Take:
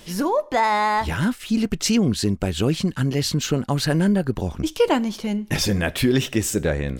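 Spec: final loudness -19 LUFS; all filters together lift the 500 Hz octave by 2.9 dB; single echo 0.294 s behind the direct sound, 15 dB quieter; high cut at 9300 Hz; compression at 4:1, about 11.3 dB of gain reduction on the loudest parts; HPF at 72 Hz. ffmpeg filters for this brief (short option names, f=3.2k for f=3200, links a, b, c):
-af "highpass=72,lowpass=9.3k,equalizer=f=500:t=o:g=3.5,acompressor=threshold=-23dB:ratio=4,aecho=1:1:294:0.178,volume=7.5dB"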